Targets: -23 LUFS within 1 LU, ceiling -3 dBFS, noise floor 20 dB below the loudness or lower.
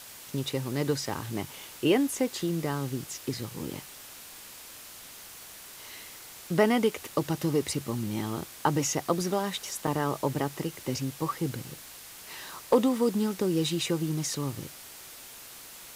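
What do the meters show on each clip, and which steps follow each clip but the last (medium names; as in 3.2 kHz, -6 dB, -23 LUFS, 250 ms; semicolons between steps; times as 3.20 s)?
dropouts 1; longest dropout 3.3 ms; noise floor -47 dBFS; noise floor target -50 dBFS; loudness -29.5 LUFS; peak level -10.0 dBFS; loudness target -23.0 LUFS
-> interpolate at 9.87 s, 3.3 ms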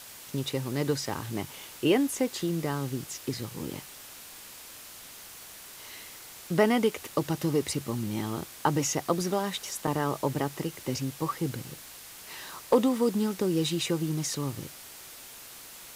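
dropouts 0; noise floor -47 dBFS; noise floor target -50 dBFS
-> noise print and reduce 6 dB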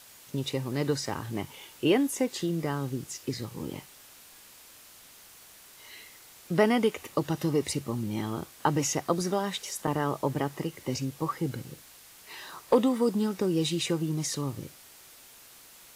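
noise floor -53 dBFS; loudness -29.5 LUFS; peak level -10.5 dBFS; loudness target -23.0 LUFS
-> trim +6.5 dB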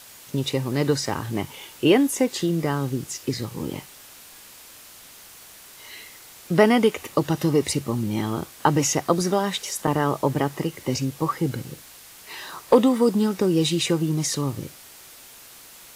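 loudness -23.0 LUFS; peak level -4.0 dBFS; noise floor -46 dBFS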